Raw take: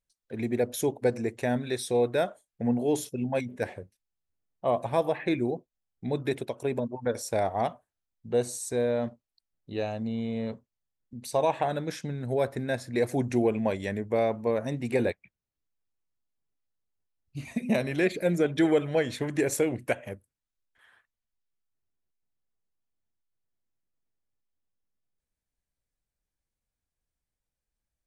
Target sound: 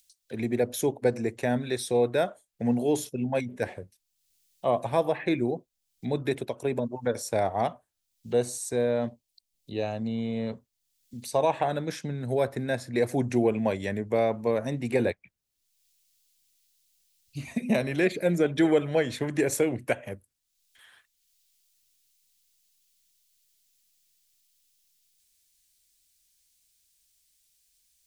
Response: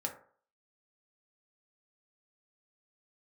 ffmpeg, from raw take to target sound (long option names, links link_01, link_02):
-filter_complex "[0:a]asettb=1/sr,asplit=3[link_01][link_02][link_03];[link_01]atrim=end=9.074[link_04];[link_02]atrim=start=9.07:end=9.83,asetpts=PTS-STARTPTS,afade=type=in:duration=0.004:curve=qsin,afade=type=out:start_time=0.756:duration=0.004:curve=qsin,equalizer=frequency=1400:width_type=o:width=0.41:gain=-14.5[link_05];[link_03]atrim=start=9.826[link_06];[link_04][link_05]acrossfade=duration=0.004:curve1=hsin:curve2=qsin[link_07];[link_07][link_06]acrossfade=duration=0.004:curve1=qsin:curve2=hsin,acrossover=split=120|1200|2900[link_08][link_09][link_10][link_11];[link_11]acompressor=mode=upward:threshold=-49dB:ratio=2.5[link_12];[link_08][link_09][link_10][link_12]amix=inputs=4:normalize=0,volume=1dB"